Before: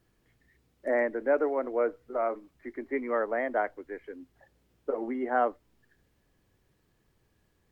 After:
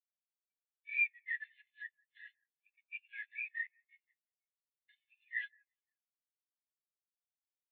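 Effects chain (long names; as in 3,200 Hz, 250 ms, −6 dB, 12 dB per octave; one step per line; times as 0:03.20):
variable-slope delta modulation 16 kbit/s
Chebyshev high-pass filter 1,300 Hz, order 10
on a send: delay that swaps between a low-pass and a high-pass 173 ms, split 1,700 Hz, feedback 53%, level −12 dB
on the sum: formants moved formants +4 semitones
every bin expanded away from the loudest bin 2.5 to 1
level +2.5 dB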